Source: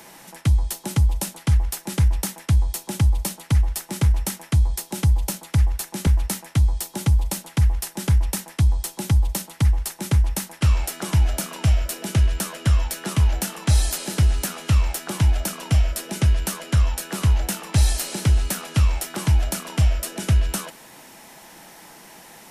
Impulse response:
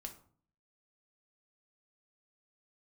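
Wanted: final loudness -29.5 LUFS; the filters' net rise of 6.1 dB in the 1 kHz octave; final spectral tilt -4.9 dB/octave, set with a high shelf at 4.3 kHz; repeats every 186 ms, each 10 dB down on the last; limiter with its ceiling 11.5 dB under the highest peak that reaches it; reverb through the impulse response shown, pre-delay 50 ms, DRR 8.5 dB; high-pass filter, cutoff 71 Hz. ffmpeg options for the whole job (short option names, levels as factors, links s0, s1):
-filter_complex "[0:a]highpass=71,equalizer=f=1000:t=o:g=8,highshelf=f=4300:g=-6.5,alimiter=limit=0.106:level=0:latency=1,aecho=1:1:186|372|558|744:0.316|0.101|0.0324|0.0104,asplit=2[s0][s1];[1:a]atrim=start_sample=2205,adelay=50[s2];[s1][s2]afir=irnorm=-1:irlink=0,volume=0.596[s3];[s0][s3]amix=inputs=2:normalize=0,volume=0.891"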